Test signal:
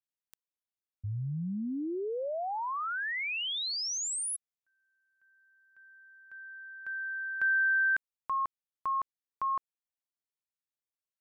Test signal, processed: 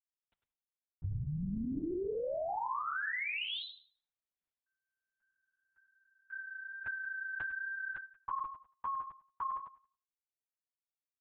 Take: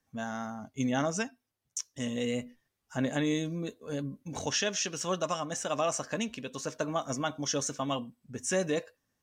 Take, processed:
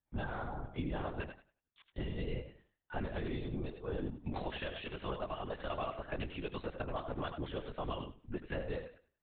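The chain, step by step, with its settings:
noise gate with hold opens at −52 dBFS, closes at −58 dBFS, hold 90 ms, range −17 dB
downward compressor 10 to 1, threshold −40 dBFS
high-frequency loss of the air 110 metres
feedback echo with a high-pass in the loop 92 ms, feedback 23%, high-pass 240 Hz, level −8.5 dB
linear-prediction vocoder at 8 kHz whisper
level +5 dB

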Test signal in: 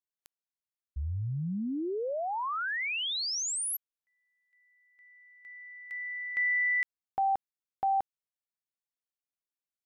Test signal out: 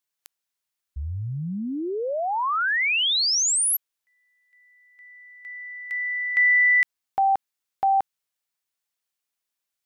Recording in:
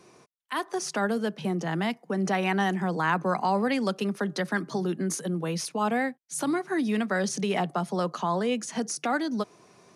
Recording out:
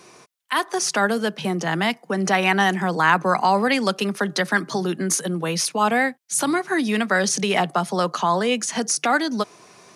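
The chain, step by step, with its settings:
tilt shelving filter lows −4 dB, about 700 Hz
level +7 dB

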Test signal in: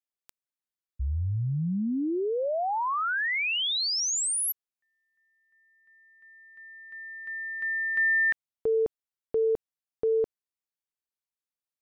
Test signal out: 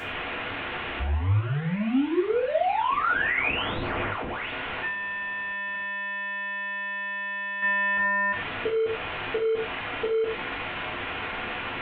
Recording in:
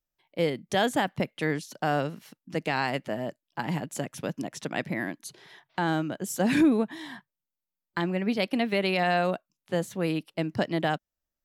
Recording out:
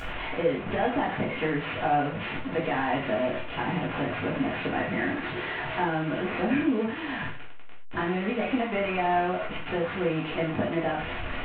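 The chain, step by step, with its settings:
linear delta modulator 16 kbit/s, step −30.5 dBFS
downward compressor 5 to 1, threshold −27 dBFS
reverb whose tail is shaped and stops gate 140 ms falling, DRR −5 dB
level −1 dB

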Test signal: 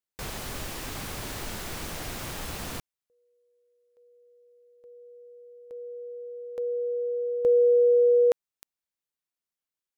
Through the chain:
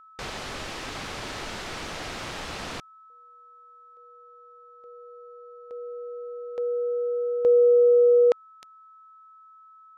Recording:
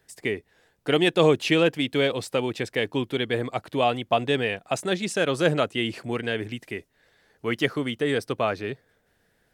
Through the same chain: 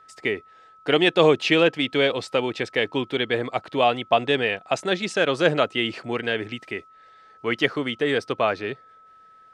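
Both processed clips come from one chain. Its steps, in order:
low-pass filter 5,300 Hz 12 dB per octave
low-shelf EQ 230 Hz −9 dB
steady tone 1,300 Hz −53 dBFS
level +4 dB

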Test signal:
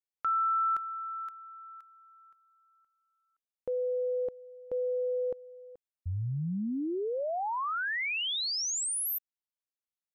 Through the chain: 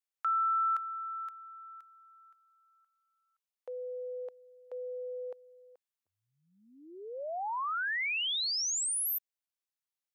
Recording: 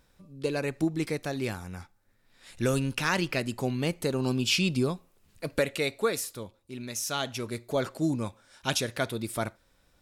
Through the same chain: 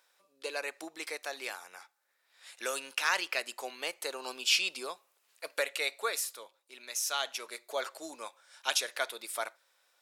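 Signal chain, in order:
Bessel high-pass filter 800 Hz, order 4

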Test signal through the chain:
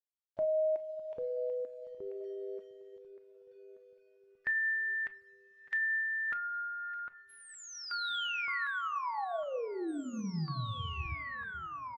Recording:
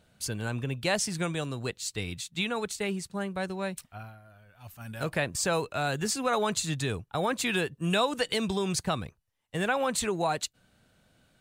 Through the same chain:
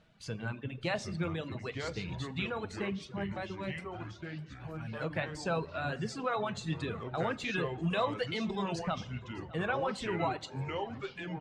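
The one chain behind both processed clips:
spectral magnitudes quantised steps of 15 dB
in parallel at −2.5 dB: downward compressor 8 to 1, threshold −37 dBFS
on the sum: bit-depth reduction 10 bits, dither none
on a send: repeating echo 606 ms, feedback 55%, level −19 dB
on the sum: rectangular room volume 480 cubic metres, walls mixed, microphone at 0.67 metres
reverb reduction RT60 1.1 s
low-pass filter 3,500 Hz 12 dB per octave
delay with pitch and tempo change per echo 693 ms, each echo −4 semitones, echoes 2, each echo −6 dB
level −6.5 dB

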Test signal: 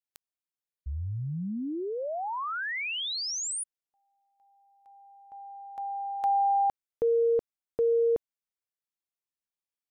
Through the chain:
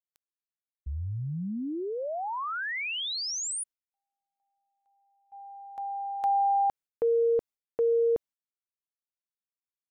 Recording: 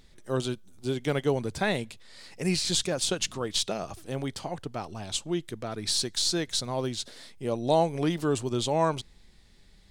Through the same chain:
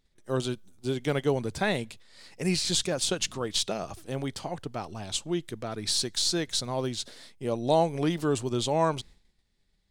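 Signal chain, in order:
downward expander −44 dBFS, range −16 dB

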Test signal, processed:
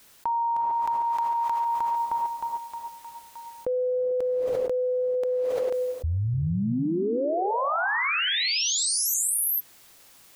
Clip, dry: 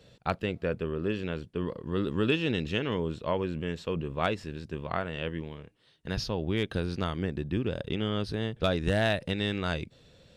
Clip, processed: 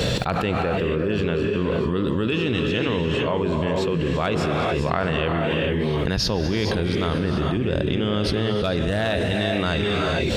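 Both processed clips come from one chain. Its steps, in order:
reverb whose tail is shaped and stops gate 470 ms rising, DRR 4 dB
envelope flattener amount 100%

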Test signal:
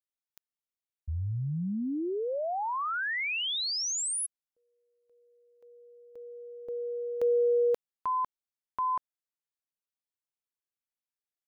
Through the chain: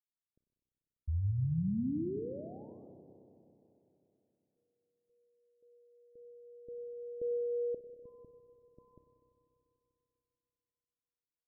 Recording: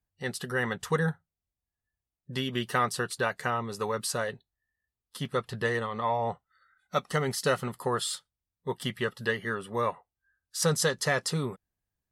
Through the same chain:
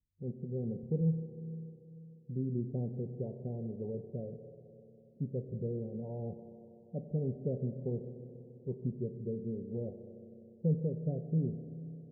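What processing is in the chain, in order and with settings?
Gaussian smoothing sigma 22 samples
spectral peaks only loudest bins 32
spring reverb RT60 3.2 s, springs 31/49 ms, chirp 35 ms, DRR 7.5 dB

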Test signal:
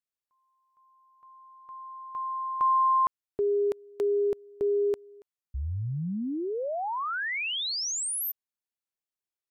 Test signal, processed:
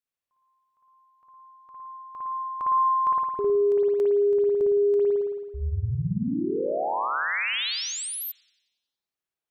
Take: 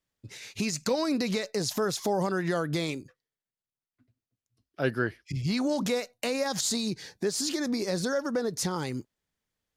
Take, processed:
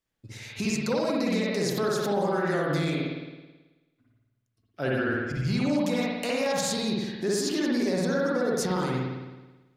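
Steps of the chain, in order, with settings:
spring reverb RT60 1.2 s, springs 54 ms, chirp 40 ms, DRR −4.5 dB
brickwall limiter −16 dBFS
level −1.5 dB

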